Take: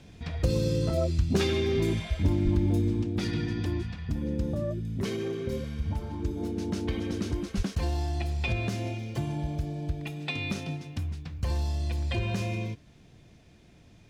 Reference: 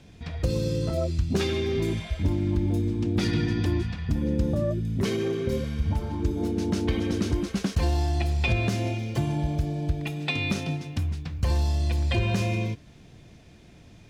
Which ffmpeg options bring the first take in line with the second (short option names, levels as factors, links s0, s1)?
-filter_complex "[0:a]asplit=3[s0][s1][s2];[s0]afade=t=out:st=2.44:d=0.02[s3];[s1]highpass=f=140:w=0.5412,highpass=f=140:w=1.3066,afade=t=in:st=2.44:d=0.02,afade=t=out:st=2.56:d=0.02[s4];[s2]afade=t=in:st=2.56:d=0.02[s5];[s3][s4][s5]amix=inputs=3:normalize=0,asplit=3[s6][s7][s8];[s6]afade=t=out:st=7.56:d=0.02[s9];[s7]highpass=f=140:w=0.5412,highpass=f=140:w=1.3066,afade=t=in:st=7.56:d=0.02,afade=t=out:st=7.68:d=0.02[s10];[s8]afade=t=in:st=7.68:d=0.02[s11];[s9][s10][s11]amix=inputs=3:normalize=0,asetnsamples=n=441:p=0,asendcmd='3.02 volume volume 5dB',volume=1"